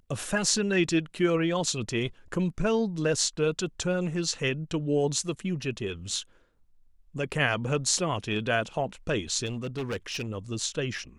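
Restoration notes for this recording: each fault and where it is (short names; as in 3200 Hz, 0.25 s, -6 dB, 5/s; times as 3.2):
9.46–10.28 clipped -27.5 dBFS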